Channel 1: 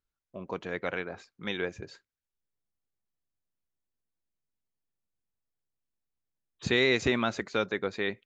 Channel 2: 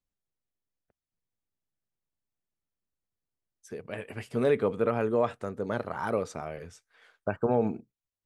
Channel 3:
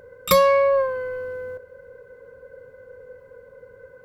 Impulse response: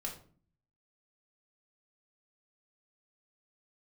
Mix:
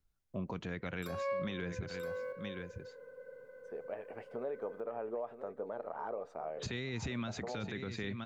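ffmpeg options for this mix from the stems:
-filter_complex "[0:a]bass=f=250:g=11,treble=f=4k:g=1,acrossover=split=250|1200|2700[a][b][c][d];[a]acompressor=threshold=-29dB:ratio=4[e];[b]acompressor=threshold=-37dB:ratio=4[f];[c]acompressor=threshold=-37dB:ratio=4[g];[d]acompressor=threshold=-40dB:ratio=4[h];[e][f][g][h]amix=inputs=4:normalize=0,volume=1dB,asplit=3[i][j][k];[j]volume=-12.5dB[l];[1:a]acompressor=threshold=-30dB:ratio=6,bandpass=f=680:t=q:w=1.7:csg=0,volume=0.5dB,asplit=2[m][n];[n]volume=-12dB[o];[2:a]highpass=f=150:w=0.5412,highpass=f=150:w=1.3066,alimiter=limit=-16dB:level=0:latency=1,adelay=750,volume=-8dB,asplit=2[p][q];[q]volume=-21dB[r];[k]apad=whole_len=211630[s];[p][s]sidechaincompress=threshold=-43dB:ratio=5:attack=49:release=280[t];[l][o][r]amix=inputs=3:normalize=0,aecho=0:1:972:1[u];[i][m][t][u]amix=inputs=4:normalize=0,alimiter=level_in=6dB:limit=-24dB:level=0:latency=1:release=139,volume=-6dB"

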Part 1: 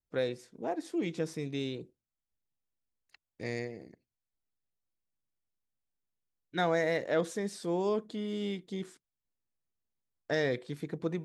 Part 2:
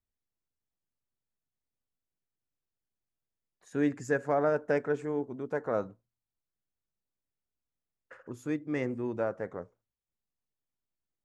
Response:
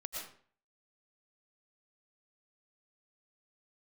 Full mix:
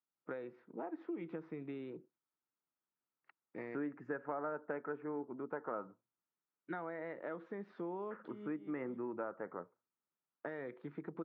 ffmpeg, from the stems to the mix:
-filter_complex "[0:a]acompressor=threshold=-36dB:ratio=6,adelay=150,volume=-5dB[a];[1:a]volume=-7dB,asplit=2[b][c];[c]apad=whole_len=502602[d];[a][d]sidechaincompress=threshold=-52dB:ratio=8:attack=16:release=248[e];[e][b]amix=inputs=2:normalize=0,highpass=f=150:w=0.5412,highpass=f=150:w=1.3066,equalizer=f=330:t=q:w=4:g=5,equalizer=f=920:t=q:w=4:g=7,equalizer=f=1.3k:t=q:w=4:g=10,lowpass=f=2.3k:w=0.5412,lowpass=f=2.3k:w=1.3066,acompressor=threshold=-37dB:ratio=5"

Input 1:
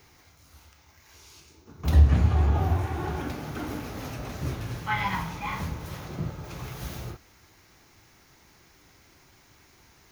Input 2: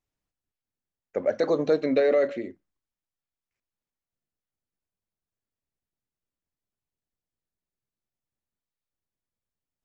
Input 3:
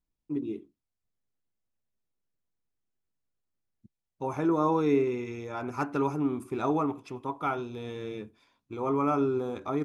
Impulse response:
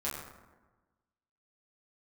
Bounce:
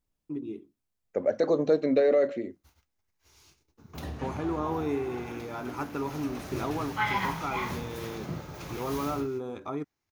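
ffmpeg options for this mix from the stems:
-filter_complex "[0:a]agate=range=-27dB:threshold=-52dB:ratio=16:detection=peak,acrossover=split=170|3000[a][b][c];[a]acompressor=threshold=-49dB:ratio=2[d];[d][b][c]amix=inputs=3:normalize=0,adelay=2100,afade=t=in:st=5.9:d=0.78:silence=0.421697[e];[1:a]equalizer=f=2.4k:t=o:w=2.6:g=-5.5,volume=0dB[f];[2:a]acompressor=threshold=-42dB:ratio=1.5,volume=1.5dB[g];[e][f][g]amix=inputs=3:normalize=0"

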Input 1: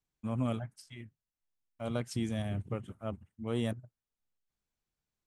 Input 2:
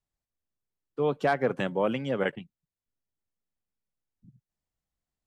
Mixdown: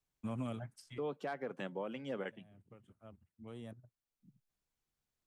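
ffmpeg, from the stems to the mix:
-filter_complex "[0:a]acrossover=split=170|1700[a][b][c];[a]acompressor=threshold=-45dB:ratio=4[d];[b]acompressor=threshold=-38dB:ratio=4[e];[c]acompressor=threshold=-54dB:ratio=4[f];[d][e][f]amix=inputs=3:normalize=0,volume=-1dB[g];[1:a]highpass=f=150:w=0.5412,highpass=f=150:w=1.3066,volume=-7dB,asplit=2[h][i];[i]apad=whole_len=232116[j];[g][j]sidechaincompress=threshold=-53dB:ratio=5:attack=27:release=1450[k];[k][h]amix=inputs=2:normalize=0,alimiter=level_in=6.5dB:limit=-24dB:level=0:latency=1:release=409,volume=-6.5dB"

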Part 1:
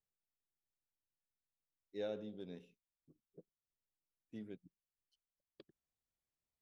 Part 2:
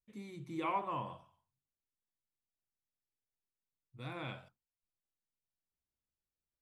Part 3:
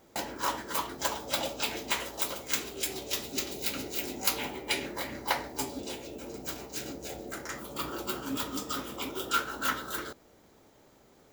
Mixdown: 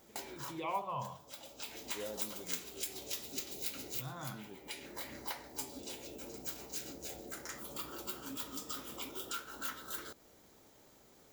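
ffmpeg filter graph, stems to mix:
-filter_complex "[0:a]volume=-2.5dB[a];[1:a]asplit=2[b][c];[c]afreqshift=0.36[d];[b][d]amix=inputs=2:normalize=1,volume=1dB,asplit=2[e][f];[2:a]acompressor=threshold=-42dB:ratio=2.5,highshelf=f=3.8k:g=8,volume=-4.5dB[g];[f]apad=whole_len=499622[h];[g][h]sidechaincompress=threshold=-49dB:ratio=8:attack=10:release=818[i];[a][e][i]amix=inputs=3:normalize=0"

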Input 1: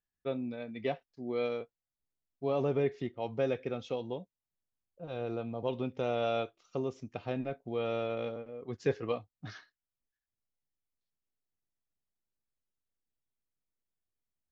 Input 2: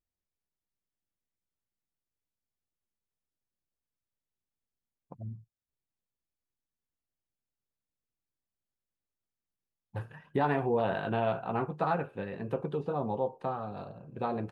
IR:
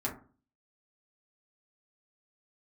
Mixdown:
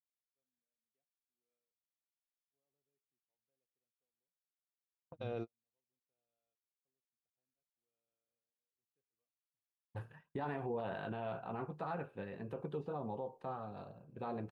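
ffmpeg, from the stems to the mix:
-filter_complex "[0:a]adelay=100,volume=-3.5dB[a];[1:a]agate=range=-33dB:threshold=-45dB:ratio=3:detection=peak,volume=-7.5dB,asplit=2[b][c];[c]apad=whole_len=644385[d];[a][d]sidechaingate=range=-60dB:threshold=-56dB:ratio=16:detection=peak[e];[e][b]amix=inputs=2:normalize=0,alimiter=level_in=7dB:limit=-24dB:level=0:latency=1:release=36,volume=-7dB"

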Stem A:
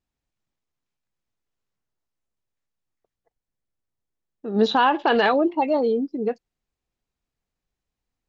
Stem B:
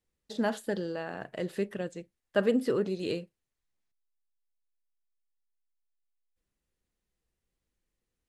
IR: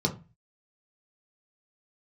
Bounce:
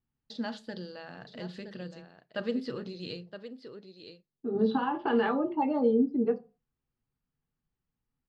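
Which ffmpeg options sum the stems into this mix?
-filter_complex "[0:a]acompressor=threshold=-20dB:ratio=6,lowpass=2k,volume=-3.5dB,asplit=2[a][b];[b]volume=-13.5dB[c];[1:a]agate=range=-33dB:threshold=-53dB:ratio=3:detection=peak,volume=-7dB,asplit=4[d][e][f][g];[e]volume=-20dB[h];[f]volume=-11.5dB[i];[g]apad=whole_len=365475[j];[a][j]sidechaincompress=threshold=-55dB:ratio=8:attack=16:release=1490[k];[2:a]atrim=start_sample=2205[l];[c][h]amix=inputs=2:normalize=0[m];[m][l]afir=irnorm=-1:irlink=0[n];[i]aecho=0:1:968:1[o];[k][d][n][o]amix=inputs=4:normalize=0,lowpass=f=4.4k:t=q:w=4.4"

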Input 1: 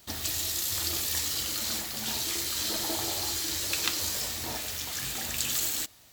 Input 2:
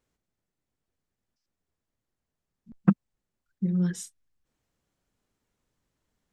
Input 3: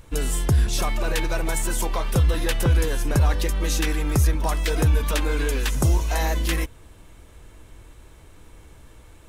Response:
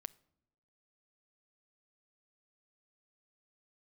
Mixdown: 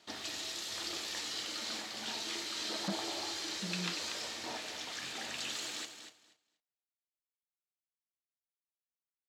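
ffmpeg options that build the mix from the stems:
-filter_complex "[0:a]volume=-3dB,asplit=2[a][b];[b]volume=-10.5dB[c];[1:a]volume=-8dB[d];[c]aecho=0:1:239|478|717:1|0.17|0.0289[e];[a][d][e]amix=inputs=3:normalize=0,asoftclip=type=tanh:threshold=-25dB,highpass=250,lowpass=4.7k"

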